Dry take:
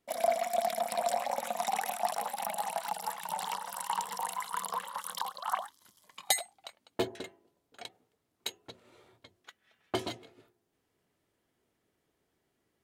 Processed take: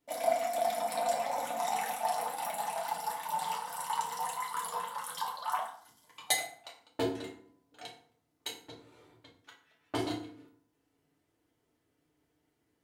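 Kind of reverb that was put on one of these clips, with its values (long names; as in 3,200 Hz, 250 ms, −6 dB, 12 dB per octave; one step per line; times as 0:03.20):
feedback delay network reverb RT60 0.53 s, low-frequency decay 1.4×, high-frequency decay 0.7×, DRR −3 dB
level −5 dB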